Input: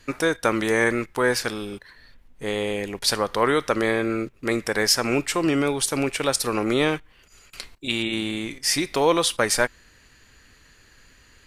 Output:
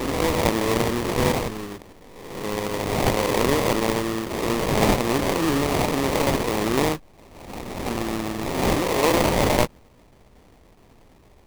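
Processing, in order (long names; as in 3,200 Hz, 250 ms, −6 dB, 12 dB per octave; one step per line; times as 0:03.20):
peak hold with a rise ahead of every peak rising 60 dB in 1.20 s
transient designer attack −4 dB, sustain 0 dB
sample-rate reduction 1,500 Hz, jitter 20%
level −1.5 dB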